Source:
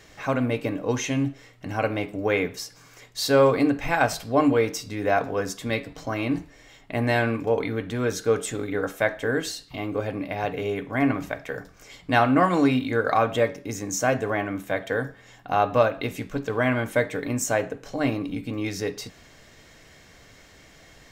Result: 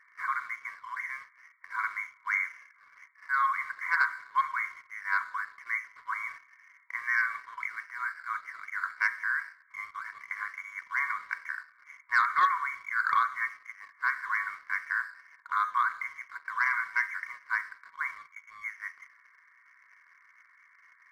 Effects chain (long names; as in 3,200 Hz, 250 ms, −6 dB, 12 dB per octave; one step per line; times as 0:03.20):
four-comb reverb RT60 1.1 s, combs from 31 ms, DRR 16 dB
brick-wall band-pass 960–2,300 Hz
leveller curve on the samples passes 1
level −2 dB